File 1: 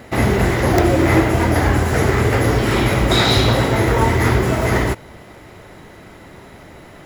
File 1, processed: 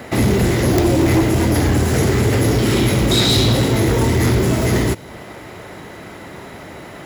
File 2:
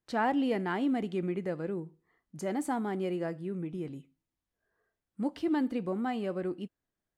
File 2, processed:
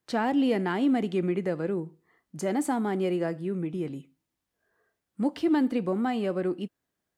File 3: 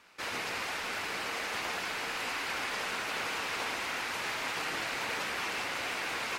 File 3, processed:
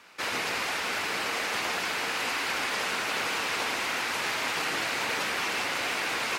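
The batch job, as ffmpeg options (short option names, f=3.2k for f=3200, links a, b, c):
-filter_complex "[0:a]highpass=f=110:p=1,acrossover=split=420|3000[a][b][c];[b]acompressor=threshold=-35dB:ratio=3[d];[a][d][c]amix=inputs=3:normalize=0,asplit=2[e][f];[f]aeval=exprs='0.668*sin(PI/2*3.55*val(0)/0.668)':c=same,volume=-10dB[g];[e][g]amix=inputs=2:normalize=0,volume=-2.5dB"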